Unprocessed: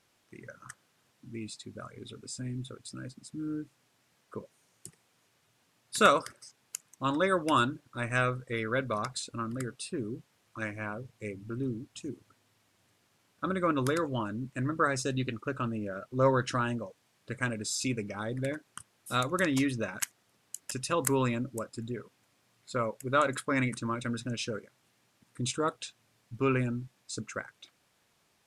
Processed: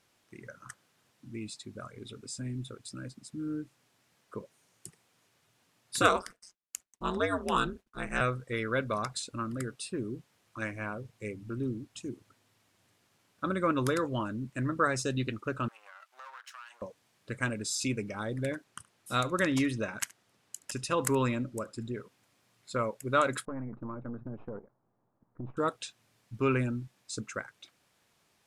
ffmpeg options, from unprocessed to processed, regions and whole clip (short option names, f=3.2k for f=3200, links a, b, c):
-filter_complex "[0:a]asettb=1/sr,asplit=3[a][b][c];[a]atrim=end=6.014[d];[b]atrim=start=6.01:end=8.21,asetpts=PTS-STARTPTS,afade=t=in:d=0.004:c=qsin,afade=t=out:st=2.196:d=0.004:c=qsin,agate=range=-33dB:threshold=-53dB:ratio=3:release=100:detection=peak,aeval=exprs='val(0)*sin(2*PI*93*n/s)':c=same[e];[c]atrim=start=8.206[f];[d][e]acrossfade=d=0.004:c1=hsin:c2=qsin[g];[g][f]acrossfade=d=0.004:c1=qsin:c2=hsin,asettb=1/sr,asplit=3[h][i][j];[h]atrim=end=15.684[k];[i]atrim=start=15.68:end=16.82,asetpts=PTS-STARTPTS,afade=t=in:d=0.004:c=qsin,afade=t=out:st=1.136:d=0.004:c=qsin,aeval=exprs='if(lt(val(0),0),0.251*val(0),val(0))':c=same,highpass=f=940:w=0.5412,highpass=f=940:w=1.3066,acompressor=threshold=-48dB:ratio=3:attack=3.2:release=140:knee=1:detection=peak[l];[j]atrim=start=16.816[m];[k][l]acrossfade=d=0.004:c1=hsin:c2=qsin[n];[n][m]acrossfade=d=0.004:c1=qsin:c2=hsin,asettb=1/sr,asplit=3[o][p][q];[o]atrim=end=18.644[r];[p]atrim=start=18.64:end=21.96,asetpts=PTS-STARTPTS,afade=t=in:d=0.004:c=qsin,afade=t=out:st=3.316:d=0.004:c=qsin,highshelf=f=11k:g=-7,aecho=1:1:73:0.075,atrim=end_sample=146412[s];[q]atrim=start=21.956[t];[r][s]acrossfade=d=0.004:c1=hsin:c2=qsin[u];[u][t]acrossfade=d=0.004:c1=qsin:c2=hsin,asettb=1/sr,asplit=3[v][w][x];[v]atrim=end=23.454[y];[w]atrim=start=23.45:end=25.57,asetpts=PTS-STARTPTS,afade=t=in:d=0.004:c=qsin,afade=t=out:st=2.116:d=0.004:c=qsin,aeval=exprs='if(lt(val(0),0),0.447*val(0),val(0))':c=same,lowpass=f=1.1k:w=0.5412,lowpass=f=1.1k:w=1.3066,acompressor=threshold=-34dB:ratio=4:attack=3.2:release=140:knee=1:detection=peak[z];[x]atrim=start=25.566[aa];[y][z]acrossfade=d=0.004:c1=hsin:c2=qsin[ab];[ab][aa]acrossfade=d=0.004:c1=qsin:c2=hsin"